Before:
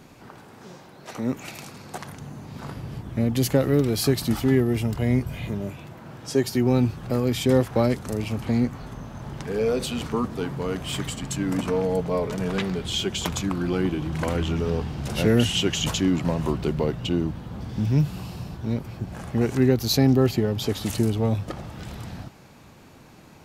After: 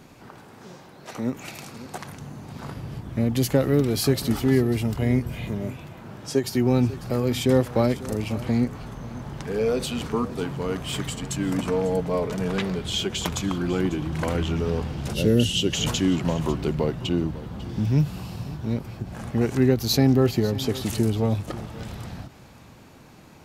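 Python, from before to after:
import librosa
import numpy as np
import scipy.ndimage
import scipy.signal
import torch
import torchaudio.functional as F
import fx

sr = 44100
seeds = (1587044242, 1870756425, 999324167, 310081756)

y = x + 10.0 ** (-17.0 / 20.0) * np.pad(x, (int(546 * sr / 1000.0), 0))[:len(x)]
y = fx.spec_box(y, sr, start_s=15.13, length_s=0.6, low_hz=610.0, high_hz=2600.0, gain_db=-10)
y = fx.end_taper(y, sr, db_per_s=300.0)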